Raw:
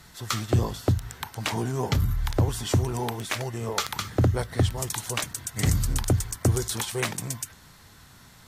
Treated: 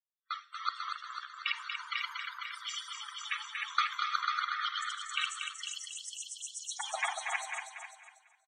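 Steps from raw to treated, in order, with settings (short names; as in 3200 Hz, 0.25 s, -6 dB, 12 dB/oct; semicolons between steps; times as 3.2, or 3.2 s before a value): regenerating reverse delay 0.248 s, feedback 75%, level -1 dB; expander -23 dBFS; elliptic high-pass 1200 Hz, stop band 70 dB, from 5.61 s 2700 Hz, from 6.78 s 710 Hz; loudest bins only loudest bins 32; air absorption 88 m; feedback echo 0.237 s, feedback 22%, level -4 dB; Schroeder reverb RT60 0.56 s, combs from 33 ms, DRR 14 dB; three-band expander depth 70%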